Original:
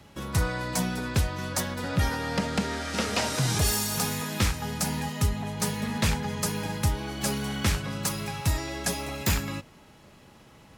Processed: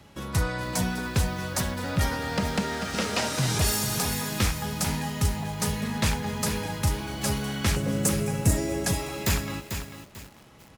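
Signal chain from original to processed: 7.76–8.86 s: graphic EQ 125/250/500/1000/4000/8000 Hz +4/+6/+10/-7/-9/+8 dB; delay 238 ms -22.5 dB; bit-crushed delay 443 ms, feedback 35%, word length 7-bit, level -7.5 dB

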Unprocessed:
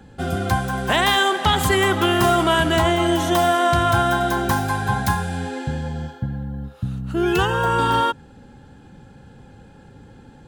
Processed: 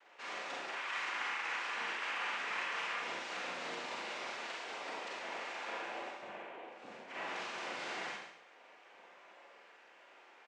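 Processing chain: spectral gate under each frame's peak -15 dB weak; 0.68–2.96 s: peaking EQ 1.9 kHz +14 dB 0.64 oct; compression 5:1, threshold -35 dBFS, peak gain reduction 15 dB; noise-vocoded speech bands 4; band-pass 420–3300 Hz; delay 136 ms -11 dB; Schroeder reverb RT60 0.65 s, combs from 32 ms, DRR -3 dB; trim -5.5 dB

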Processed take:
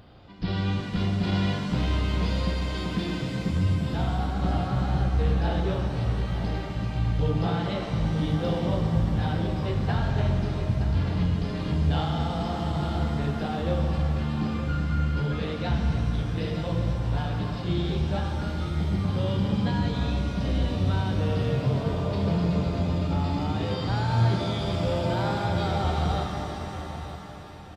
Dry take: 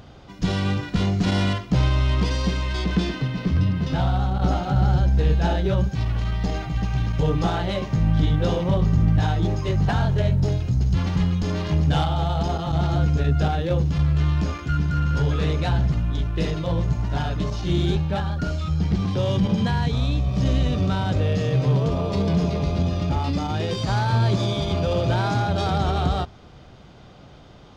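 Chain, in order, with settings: resampled via 11.025 kHz; feedback delay 921 ms, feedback 35%, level -12 dB; pitch-shifted reverb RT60 3 s, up +7 st, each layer -8 dB, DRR 2.5 dB; trim -6.5 dB

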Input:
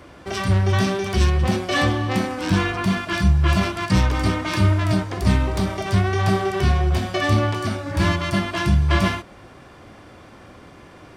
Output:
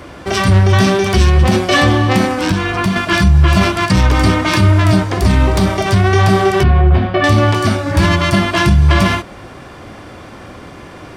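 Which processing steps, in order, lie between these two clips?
2.31–2.96 s: compression 10:1, threshold -22 dBFS, peak gain reduction 9 dB; 6.63–7.24 s: distance through air 430 m; loudness maximiser +11.5 dB; trim -1 dB

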